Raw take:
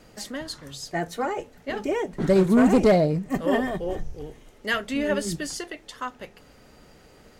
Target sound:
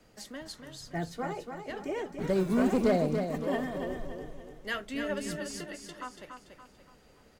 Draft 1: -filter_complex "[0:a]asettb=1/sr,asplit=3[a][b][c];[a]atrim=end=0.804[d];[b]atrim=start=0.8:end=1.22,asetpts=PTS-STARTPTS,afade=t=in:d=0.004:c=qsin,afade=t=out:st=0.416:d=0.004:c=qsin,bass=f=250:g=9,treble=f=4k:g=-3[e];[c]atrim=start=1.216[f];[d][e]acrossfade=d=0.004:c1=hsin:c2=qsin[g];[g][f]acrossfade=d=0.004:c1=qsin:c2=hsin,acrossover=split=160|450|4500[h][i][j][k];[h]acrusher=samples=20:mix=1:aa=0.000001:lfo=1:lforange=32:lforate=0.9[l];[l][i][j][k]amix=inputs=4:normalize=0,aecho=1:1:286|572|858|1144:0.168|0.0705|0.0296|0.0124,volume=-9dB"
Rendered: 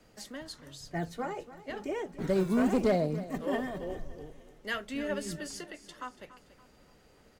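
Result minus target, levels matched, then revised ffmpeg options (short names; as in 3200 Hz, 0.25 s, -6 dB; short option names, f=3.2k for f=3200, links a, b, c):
echo-to-direct -8.5 dB
-filter_complex "[0:a]asettb=1/sr,asplit=3[a][b][c];[a]atrim=end=0.804[d];[b]atrim=start=0.8:end=1.22,asetpts=PTS-STARTPTS,afade=t=in:d=0.004:c=qsin,afade=t=out:st=0.416:d=0.004:c=qsin,bass=f=250:g=9,treble=f=4k:g=-3[e];[c]atrim=start=1.216[f];[d][e]acrossfade=d=0.004:c1=hsin:c2=qsin[g];[g][f]acrossfade=d=0.004:c1=qsin:c2=hsin,acrossover=split=160|450|4500[h][i][j][k];[h]acrusher=samples=20:mix=1:aa=0.000001:lfo=1:lforange=32:lforate=0.9[l];[l][i][j][k]amix=inputs=4:normalize=0,aecho=1:1:286|572|858|1144|1430:0.473|0.199|0.0835|0.0351|0.0147,volume=-9dB"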